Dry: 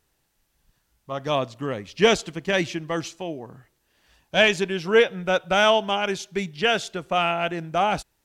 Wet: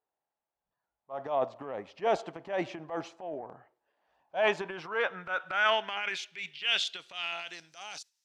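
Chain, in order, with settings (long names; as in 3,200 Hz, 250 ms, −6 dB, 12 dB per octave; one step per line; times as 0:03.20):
noise reduction from a noise print of the clip's start 8 dB
band-pass filter sweep 750 Hz → 5,500 Hz, 0:04.25–0:07.78
transient designer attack −8 dB, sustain +8 dB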